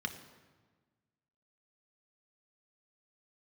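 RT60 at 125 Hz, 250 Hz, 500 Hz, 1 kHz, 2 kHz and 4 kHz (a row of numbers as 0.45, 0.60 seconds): 1.8, 1.7, 1.4, 1.4, 1.2, 1.0 seconds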